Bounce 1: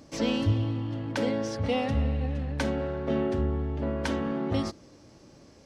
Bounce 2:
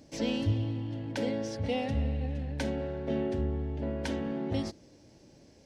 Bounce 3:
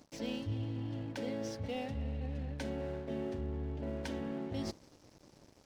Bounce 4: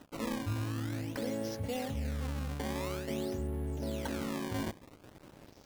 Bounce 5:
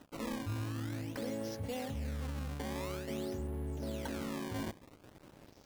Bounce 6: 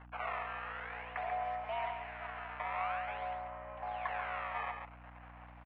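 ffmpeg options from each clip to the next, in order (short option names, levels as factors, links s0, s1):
-af "equalizer=f=1200:w=3.4:g=-12,volume=0.668"
-af "areverse,acompressor=threshold=0.0112:ratio=4,areverse,aeval=exprs='sgn(val(0))*max(abs(val(0))-0.00119,0)':c=same,volume=1.41"
-filter_complex "[0:a]asplit=2[s0][s1];[s1]acompressor=threshold=0.00562:ratio=6,volume=1[s2];[s0][s2]amix=inputs=2:normalize=0,acrusher=samples=19:mix=1:aa=0.000001:lfo=1:lforange=30.4:lforate=0.49"
-af "volume=31.6,asoftclip=hard,volume=0.0316,volume=0.75"
-af "aecho=1:1:139:0.501,highpass=f=560:t=q:w=0.5412,highpass=f=560:t=q:w=1.307,lowpass=f=2400:t=q:w=0.5176,lowpass=f=2400:t=q:w=0.7071,lowpass=f=2400:t=q:w=1.932,afreqshift=180,aeval=exprs='val(0)+0.000891*(sin(2*PI*60*n/s)+sin(2*PI*2*60*n/s)/2+sin(2*PI*3*60*n/s)/3+sin(2*PI*4*60*n/s)/4+sin(2*PI*5*60*n/s)/5)':c=same,volume=2.24"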